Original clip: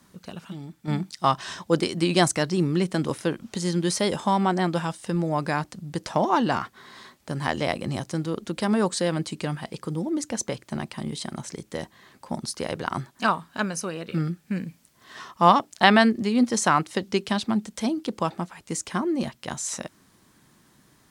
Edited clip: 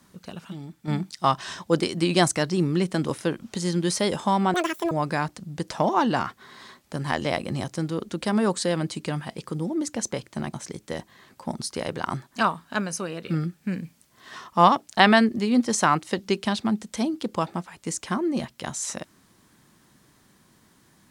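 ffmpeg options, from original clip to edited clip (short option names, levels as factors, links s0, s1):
-filter_complex "[0:a]asplit=4[s0][s1][s2][s3];[s0]atrim=end=4.544[s4];[s1]atrim=start=4.54:end=5.27,asetpts=PTS-STARTPTS,asetrate=86436,aresample=44100[s5];[s2]atrim=start=5.266:end=10.892[s6];[s3]atrim=start=11.368[s7];[s4][s5]acrossfade=d=0.004:c1=hsin:c2=hsin[s8];[s8][s6]acrossfade=d=0.004:c1=hsin:c2=hsin[s9];[s9][s7]acrossfade=d=0.004:c1=hsin:c2=hsin"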